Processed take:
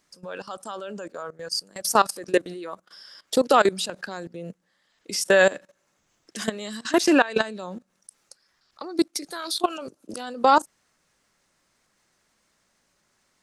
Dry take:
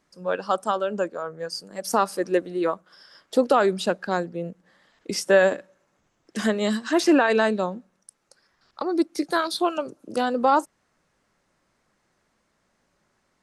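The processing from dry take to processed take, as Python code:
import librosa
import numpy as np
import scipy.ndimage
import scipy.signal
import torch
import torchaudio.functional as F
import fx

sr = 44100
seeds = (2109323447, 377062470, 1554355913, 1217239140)

y = fx.level_steps(x, sr, step_db=19)
y = fx.high_shelf(y, sr, hz=2300.0, db=11.0)
y = y * 10.0 ** (2.5 / 20.0)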